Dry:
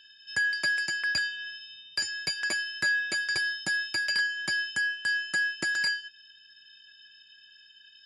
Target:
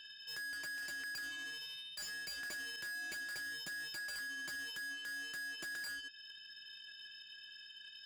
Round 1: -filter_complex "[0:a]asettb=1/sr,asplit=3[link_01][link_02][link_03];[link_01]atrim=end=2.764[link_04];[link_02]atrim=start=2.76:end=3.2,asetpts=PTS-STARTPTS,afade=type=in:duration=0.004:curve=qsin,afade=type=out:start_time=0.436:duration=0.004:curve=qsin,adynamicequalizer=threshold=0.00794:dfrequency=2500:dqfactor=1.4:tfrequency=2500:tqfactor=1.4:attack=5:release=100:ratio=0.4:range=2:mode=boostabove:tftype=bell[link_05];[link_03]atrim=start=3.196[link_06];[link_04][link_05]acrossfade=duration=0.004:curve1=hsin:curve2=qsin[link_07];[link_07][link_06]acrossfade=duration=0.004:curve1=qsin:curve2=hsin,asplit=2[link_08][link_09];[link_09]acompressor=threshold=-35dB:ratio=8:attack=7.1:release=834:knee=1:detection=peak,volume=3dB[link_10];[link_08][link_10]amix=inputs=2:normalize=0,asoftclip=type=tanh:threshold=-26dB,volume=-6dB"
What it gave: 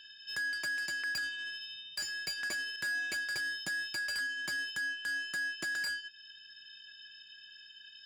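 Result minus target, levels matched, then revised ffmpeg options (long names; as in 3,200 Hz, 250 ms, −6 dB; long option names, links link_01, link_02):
soft clipping: distortion −7 dB
-filter_complex "[0:a]asettb=1/sr,asplit=3[link_01][link_02][link_03];[link_01]atrim=end=2.764[link_04];[link_02]atrim=start=2.76:end=3.2,asetpts=PTS-STARTPTS,afade=type=in:duration=0.004:curve=qsin,afade=type=out:start_time=0.436:duration=0.004:curve=qsin,adynamicequalizer=threshold=0.00794:dfrequency=2500:dqfactor=1.4:tfrequency=2500:tqfactor=1.4:attack=5:release=100:ratio=0.4:range=2:mode=boostabove:tftype=bell[link_05];[link_03]atrim=start=3.196[link_06];[link_04][link_05]acrossfade=duration=0.004:curve1=hsin:curve2=qsin[link_07];[link_07][link_06]acrossfade=duration=0.004:curve1=qsin:curve2=hsin,asplit=2[link_08][link_09];[link_09]acompressor=threshold=-35dB:ratio=8:attack=7.1:release=834:knee=1:detection=peak,volume=3dB[link_10];[link_08][link_10]amix=inputs=2:normalize=0,asoftclip=type=tanh:threshold=-36.5dB,volume=-6dB"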